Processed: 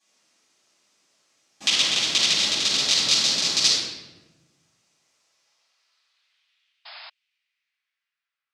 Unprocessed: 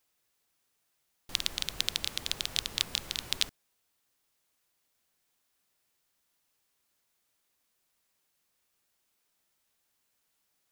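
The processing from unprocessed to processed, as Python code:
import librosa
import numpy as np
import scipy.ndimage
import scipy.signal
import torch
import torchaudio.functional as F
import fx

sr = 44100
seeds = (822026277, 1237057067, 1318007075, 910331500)

y = fx.speed_glide(x, sr, from_pct=70, to_pct=181)
y = fx.filter_sweep_highpass(y, sr, from_hz=230.0, to_hz=3700.0, start_s=4.56, end_s=7.02, q=0.93)
y = fx.room_shoebox(y, sr, seeds[0], volume_m3=570.0, walls='mixed', distance_m=8.5)
y = fx.filter_sweep_lowpass(y, sr, from_hz=6500.0, to_hz=1200.0, start_s=5.22, end_s=8.76, q=2.1)
y = fx.spec_paint(y, sr, seeds[1], shape='noise', start_s=6.85, length_s=0.25, low_hz=590.0, high_hz=5200.0, level_db=-38.0)
y = y * 10.0 ** (-4.0 / 20.0)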